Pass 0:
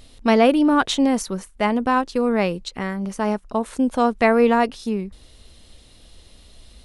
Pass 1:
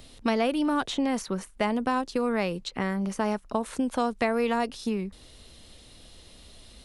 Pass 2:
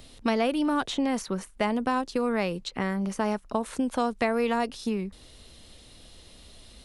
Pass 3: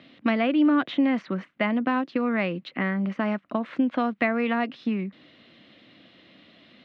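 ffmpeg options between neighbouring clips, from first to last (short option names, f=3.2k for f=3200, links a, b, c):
-filter_complex "[0:a]acrossover=split=89|880|3700[a][b][c][d];[a]acompressor=threshold=-51dB:ratio=4[e];[b]acompressor=threshold=-26dB:ratio=4[f];[c]acompressor=threshold=-32dB:ratio=4[g];[d]acompressor=threshold=-41dB:ratio=4[h];[e][f][g][h]amix=inputs=4:normalize=0"
-af anull
-af "highpass=f=150:w=0.5412,highpass=f=150:w=1.3066,equalizer=f=300:t=q:w=4:g=5,equalizer=f=430:t=q:w=4:g=-9,equalizer=f=880:t=q:w=4:g=-8,equalizer=f=2k:t=q:w=4:g=4,lowpass=f=3.1k:w=0.5412,lowpass=f=3.1k:w=1.3066,volume=3dB"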